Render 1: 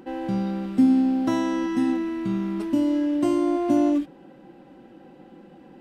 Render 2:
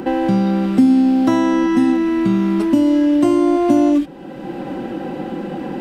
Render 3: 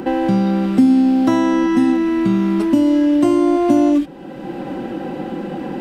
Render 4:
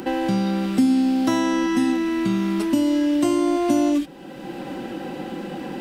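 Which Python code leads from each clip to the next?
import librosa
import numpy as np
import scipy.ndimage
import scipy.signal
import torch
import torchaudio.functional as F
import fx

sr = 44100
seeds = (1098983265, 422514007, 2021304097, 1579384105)

y1 = fx.band_squash(x, sr, depth_pct=70)
y1 = y1 * librosa.db_to_amplitude(8.0)
y2 = y1
y3 = fx.high_shelf(y2, sr, hz=2300.0, db=11.0)
y3 = y3 * librosa.db_to_amplitude(-6.0)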